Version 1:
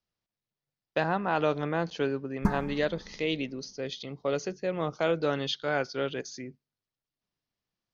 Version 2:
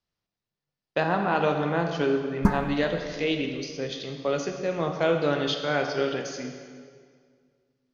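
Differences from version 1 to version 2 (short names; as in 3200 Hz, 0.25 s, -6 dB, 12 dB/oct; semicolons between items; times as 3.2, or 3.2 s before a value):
speech: send on; background +5.0 dB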